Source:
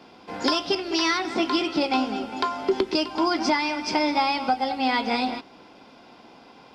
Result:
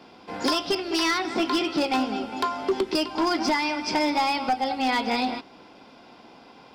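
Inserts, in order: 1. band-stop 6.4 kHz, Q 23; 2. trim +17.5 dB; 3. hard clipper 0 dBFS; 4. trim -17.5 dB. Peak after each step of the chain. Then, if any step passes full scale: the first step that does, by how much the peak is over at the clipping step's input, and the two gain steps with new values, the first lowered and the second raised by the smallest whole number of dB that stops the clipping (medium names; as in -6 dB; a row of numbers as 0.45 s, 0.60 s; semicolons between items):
-10.0 dBFS, +7.5 dBFS, 0.0 dBFS, -17.5 dBFS; step 2, 7.5 dB; step 2 +9.5 dB, step 4 -9.5 dB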